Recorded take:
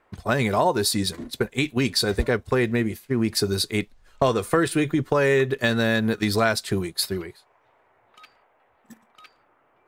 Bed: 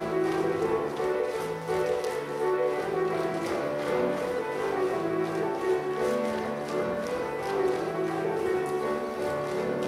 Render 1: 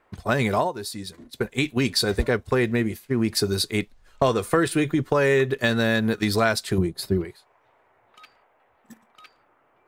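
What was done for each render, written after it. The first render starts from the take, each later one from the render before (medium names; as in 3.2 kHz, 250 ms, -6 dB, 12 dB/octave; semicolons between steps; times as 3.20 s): 0.57–1.46 s: dip -10.5 dB, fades 0.15 s; 6.78–7.25 s: tilt shelf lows +8.5 dB, about 710 Hz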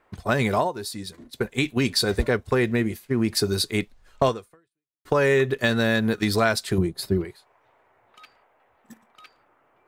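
4.28–5.05 s: fade out exponential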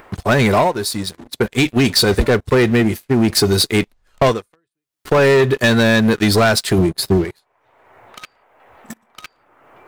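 waveshaping leveller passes 3; upward compressor, threshold -26 dBFS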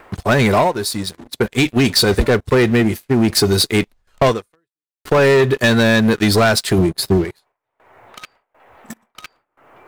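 gate with hold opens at -44 dBFS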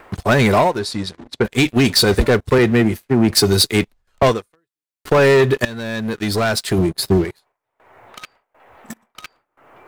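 0.79–1.45 s: distance through air 73 m; 2.58–4.23 s: three bands expanded up and down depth 40%; 5.65–7.18 s: fade in, from -19 dB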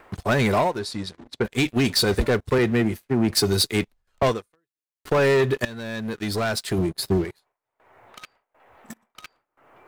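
trim -6.5 dB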